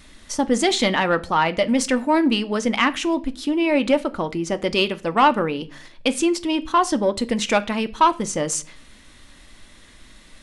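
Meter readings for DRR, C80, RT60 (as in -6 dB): 10.5 dB, 25.0 dB, 0.40 s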